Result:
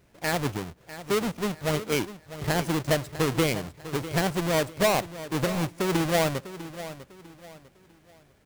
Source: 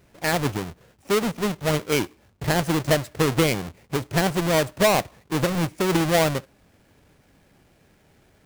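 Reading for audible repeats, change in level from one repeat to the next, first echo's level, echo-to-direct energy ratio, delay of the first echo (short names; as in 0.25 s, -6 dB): 3, -9.5 dB, -14.0 dB, -13.5 dB, 0.649 s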